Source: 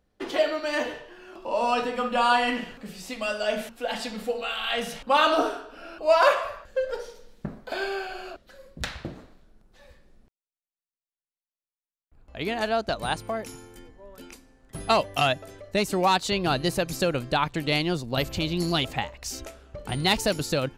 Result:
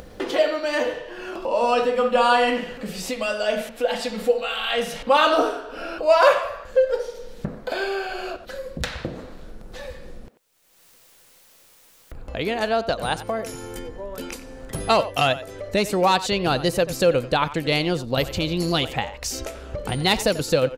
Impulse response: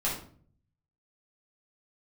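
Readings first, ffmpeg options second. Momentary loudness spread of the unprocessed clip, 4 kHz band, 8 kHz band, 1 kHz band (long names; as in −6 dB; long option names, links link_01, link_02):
18 LU, +3.0 dB, +4.0 dB, +3.0 dB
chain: -filter_complex "[0:a]equalizer=frequency=500:width=7:gain=9,asplit=2[link_01][link_02];[link_02]adelay=90,highpass=300,lowpass=3400,asoftclip=type=hard:threshold=-12.5dB,volume=-14dB[link_03];[link_01][link_03]amix=inputs=2:normalize=0,acompressor=mode=upward:threshold=-25dB:ratio=2.5,volume=2.5dB"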